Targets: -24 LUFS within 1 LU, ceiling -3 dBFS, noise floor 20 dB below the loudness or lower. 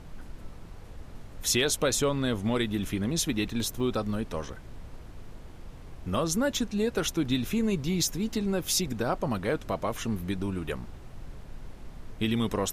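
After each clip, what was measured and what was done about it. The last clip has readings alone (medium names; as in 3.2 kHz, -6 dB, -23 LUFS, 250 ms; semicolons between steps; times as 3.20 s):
dropouts 1; longest dropout 4.1 ms; noise floor -46 dBFS; noise floor target -49 dBFS; loudness -29.0 LUFS; peak level -13.5 dBFS; loudness target -24.0 LUFS
-> interpolate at 3.80 s, 4.1 ms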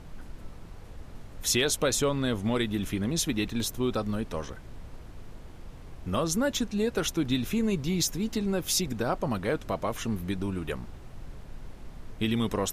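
dropouts 0; noise floor -46 dBFS; noise floor target -49 dBFS
-> noise print and reduce 6 dB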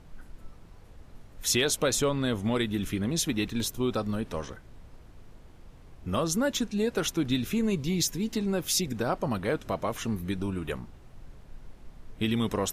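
noise floor -51 dBFS; loudness -29.0 LUFS; peak level -13.5 dBFS; loudness target -24.0 LUFS
-> trim +5 dB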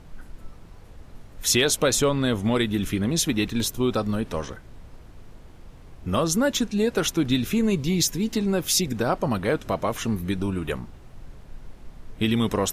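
loudness -24.0 LUFS; peak level -8.5 dBFS; noise floor -46 dBFS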